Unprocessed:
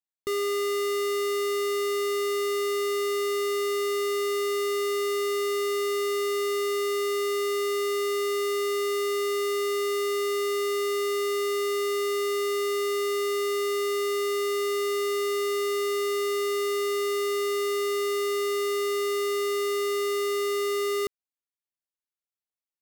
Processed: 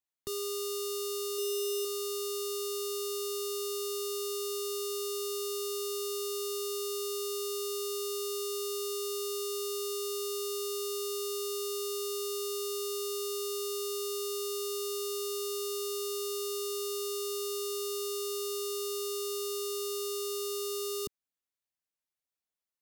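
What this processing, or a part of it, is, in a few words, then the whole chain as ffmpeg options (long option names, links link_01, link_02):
one-band saturation: -filter_complex "[0:a]acrossover=split=220|3200[link_01][link_02][link_03];[link_02]asoftclip=type=tanh:threshold=-38dB[link_04];[link_01][link_04][link_03]amix=inputs=3:normalize=0,asettb=1/sr,asplit=3[link_05][link_06][link_07];[link_05]atrim=end=1.374[link_08];[link_06]atrim=start=1.37:end=1.85,asetpts=PTS-STARTPTS,afade=type=in:duration=0.004:curve=qsin,afade=type=out:start_time=0.476:duration=0.004:curve=qsin,asplit=2[link_09][link_10];[link_10]adelay=12,volume=-4dB[link_11];[link_09][link_11]amix=inputs=2:normalize=0,atrim=end_sample=21168[link_12];[link_07]atrim=start=1.846[link_13];[link_08][link_12]acrossfade=duration=0.004:curve1=hsin:curve2=qsin[link_14];[link_14][link_13]acrossfade=duration=0.004:curve1=qsin:curve2=hsin"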